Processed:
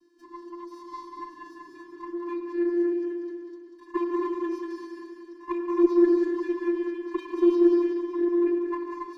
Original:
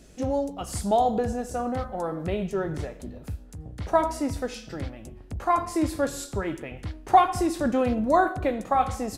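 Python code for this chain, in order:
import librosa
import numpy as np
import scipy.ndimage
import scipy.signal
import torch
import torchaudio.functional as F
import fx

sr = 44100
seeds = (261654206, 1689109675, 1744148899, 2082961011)

y = scipy.signal.sosfilt(scipy.signal.ellip(4, 1.0, 40, 5500.0, 'lowpass', fs=sr, output='sos'), x)
y = fx.low_shelf(y, sr, hz=190.0, db=-10.0)
y = fx.rider(y, sr, range_db=4, speed_s=0.5)
y = fx.env_flanger(y, sr, rest_ms=5.5, full_db=-5.5)
y = fx.vocoder(y, sr, bands=16, carrier='square', carrier_hz=345.0)
y = fx.env_phaser(y, sr, low_hz=440.0, high_hz=3700.0, full_db=-14.5)
y = fx.echo_feedback(y, sr, ms=190, feedback_pct=56, wet_db=-5.5)
y = fx.rev_gated(y, sr, seeds[0], gate_ms=320, shape='rising', drr_db=2.0)
y = fx.running_max(y, sr, window=3)
y = y * librosa.db_to_amplitude(1.5)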